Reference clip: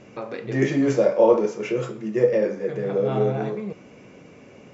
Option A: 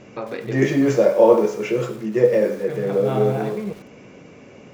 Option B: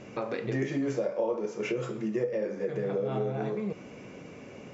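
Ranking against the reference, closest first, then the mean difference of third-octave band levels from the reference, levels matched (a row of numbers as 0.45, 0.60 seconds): A, B; 2.0, 4.5 decibels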